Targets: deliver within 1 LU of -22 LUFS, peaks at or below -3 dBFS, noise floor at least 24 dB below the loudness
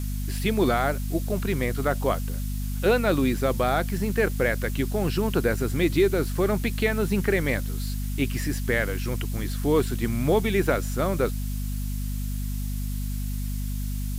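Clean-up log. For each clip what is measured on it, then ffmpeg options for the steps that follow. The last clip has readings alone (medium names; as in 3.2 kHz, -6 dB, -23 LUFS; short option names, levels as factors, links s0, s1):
hum 50 Hz; highest harmonic 250 Hz; hum level -26 dBFS; noise floor -29 dBFS; noise floor target -50 dBFS; loudness -26.0 LUFS; peak level -10.0 dBFS; loudness target -22.0 LUFS
-> -af "bandreject=f=50:t=h:w=6,bandreject=f=100:t=h:w=6,bandreject=f=150:t=h:w=6,bandreject=f=200:t=h:w=6,bandreject=f=250:t=h:w=6"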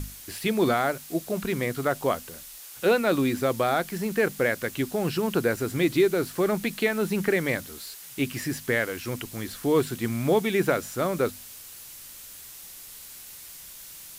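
hum not found; noise floor -44 dBFS; noise floor target -50 dBFS
-> -af "afftdn=nr=6:nf=-44"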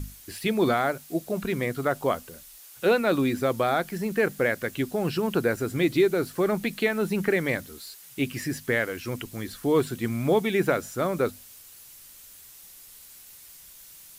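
noise floor -49 dBFS; noise floor target -51 dBFS
-> -af "afftdn=nr=6:nf=-49"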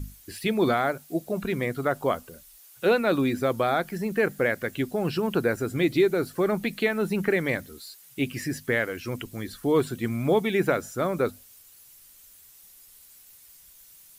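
noise floor -53 dBFS; loudness -26.5 LUFS; peak level -11.0 dBFS; loudness target -22.0 LUFS
-> -af "volume=1.68"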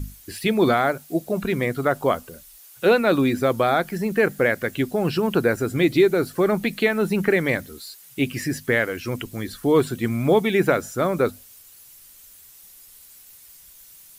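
loudness -22.0 LUFS; peak level -6.5 dBFS; noise floor -48 dBFS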